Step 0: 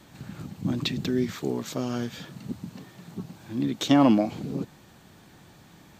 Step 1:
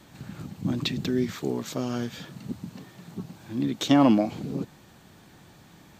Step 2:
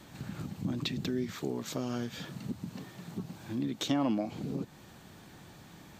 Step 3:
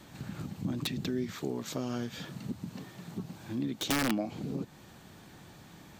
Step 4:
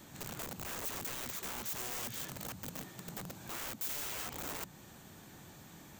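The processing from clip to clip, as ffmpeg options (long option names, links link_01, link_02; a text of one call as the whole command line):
ffmpeg -i in.wav -af anull out.wav
ffmpeg -i in.wav -af "acompressor=threshold=-35dB:ratio=2" out.wav
ffmpeg -i in.wav -af "aeval=exprs='(mod(12.6*val(0)+1,2)-1)/12.6':channel_layout=same" out.wav
ffmpeg -i in.wav -af "bandreject=frequency=60:width_type=h:width=6,bandreject=frequency=120:width_type=h:width=6,bandreject=frequency=180:width_type=h:width=6,aeval=exprs='(mod(70.8*val(0)+1,2)-1)/70.8':channel_layout=same,aexciter=amount=2.6:drive=1:freq=6300,volume=-2dB" out.wav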